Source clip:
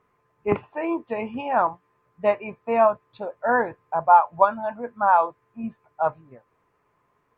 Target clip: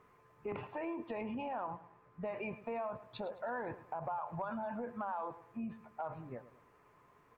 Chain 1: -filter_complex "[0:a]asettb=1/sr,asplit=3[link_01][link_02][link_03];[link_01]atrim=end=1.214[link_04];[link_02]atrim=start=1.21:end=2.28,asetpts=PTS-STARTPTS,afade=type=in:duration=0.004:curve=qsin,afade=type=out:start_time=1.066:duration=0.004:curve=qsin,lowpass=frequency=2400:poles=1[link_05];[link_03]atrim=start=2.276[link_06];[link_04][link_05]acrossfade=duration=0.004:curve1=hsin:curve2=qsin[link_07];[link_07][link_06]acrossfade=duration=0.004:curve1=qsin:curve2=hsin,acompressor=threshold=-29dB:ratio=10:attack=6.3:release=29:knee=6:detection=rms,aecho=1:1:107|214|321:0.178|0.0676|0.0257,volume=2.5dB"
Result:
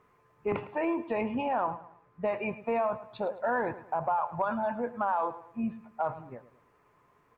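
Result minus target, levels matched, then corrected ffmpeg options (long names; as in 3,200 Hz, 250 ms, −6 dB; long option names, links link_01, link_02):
downward compressor: peak gain reduction −11 dB
-filter_complex "[0:a]asettb=1/sr,asplit=3[link_01][link_02][link_03];[link_01]atrim=end=1.214[link_04];[link_02]atrim=start=1.21:end=2.28,asetpts=PTS-STARTPTS,afade=type=in:duration=0.004:curve=qsin,afade=type=out:start_time=1.066:duration=0.004:curve=qsin,lowpass=frequency=2400:poles=1[link_05];[link_03]atrim=start=2.276[link_06];[link_04][link_05]acrossfade=duration=0.004:curve1=hsin:curve2=qsin[link_07];[link_07][link_06]acrossfade=duration=0.004:curve1=qsin:curve2=hsin,acompressor=threshold=-41dB:ratio=10:attack=6.3:release=29:knee=6:detection=rms,aecho=1:1:107|214|321:0.178|0.0676|0.0257,volume=2.5dB"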